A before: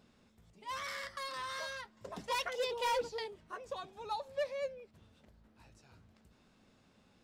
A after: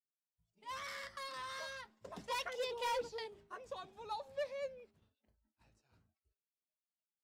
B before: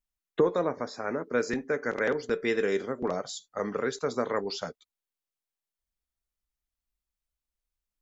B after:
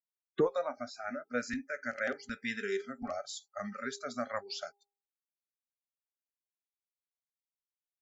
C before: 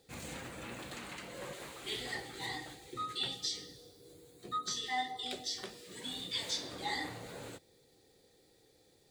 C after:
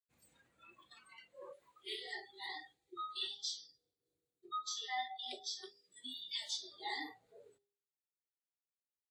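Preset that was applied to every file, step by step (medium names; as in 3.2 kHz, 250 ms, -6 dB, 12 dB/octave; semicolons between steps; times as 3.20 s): expander -54 dBFS; spectral noise reduction 26 dB; de-hum 403.4 Hz, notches 2; trim -4 dB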